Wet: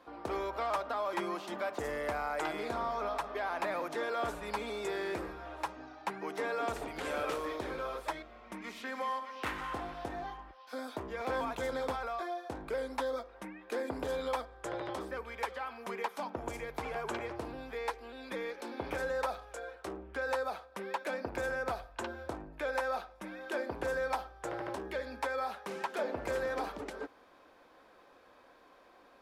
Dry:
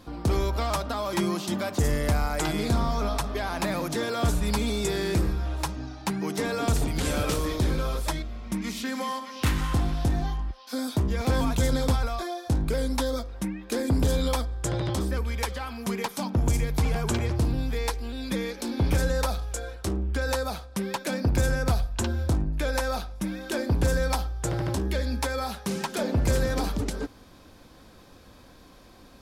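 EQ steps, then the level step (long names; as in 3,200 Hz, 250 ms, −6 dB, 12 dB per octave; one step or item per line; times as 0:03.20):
three-way crossover with the lows and the highs turned down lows −23 dB, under 370 Hz, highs −15 dB, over 2,600 Hz
−3.0 dB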